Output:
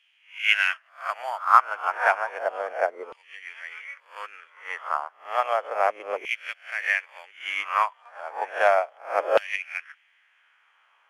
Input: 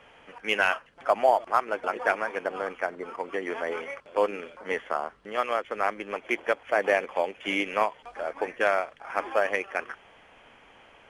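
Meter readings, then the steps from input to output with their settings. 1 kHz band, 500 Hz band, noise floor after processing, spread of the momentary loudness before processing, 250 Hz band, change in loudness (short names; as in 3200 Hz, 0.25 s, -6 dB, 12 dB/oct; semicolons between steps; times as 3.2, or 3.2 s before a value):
+3.5 dB, -1.0 dB, -64 dBFS, 9 LU, under -15 dB, +3.0 dB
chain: spectral swells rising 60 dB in 0.52 s; LFO high-pass saw down 0.32 Hz 470–2900 Hz; upward expander 1.5:1, over -42 dBFS; gain +2 dB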